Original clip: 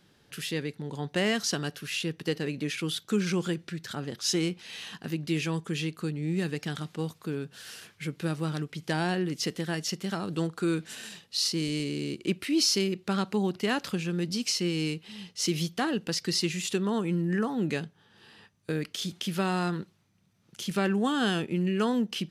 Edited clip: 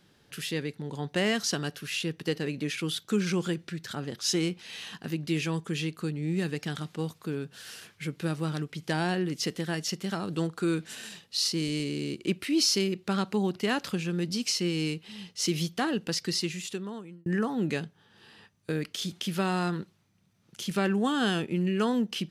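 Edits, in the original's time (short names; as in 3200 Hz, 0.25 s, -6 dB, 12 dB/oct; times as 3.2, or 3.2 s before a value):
16.17–17.26 fade out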